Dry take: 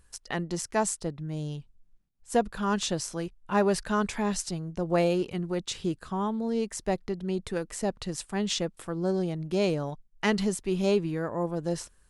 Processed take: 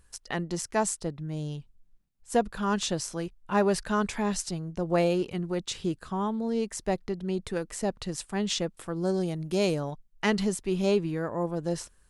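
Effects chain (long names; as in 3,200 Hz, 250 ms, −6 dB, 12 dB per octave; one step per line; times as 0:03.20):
0:08.96–0:09.80: high-shelf EQ 7,200 Hz +12 dB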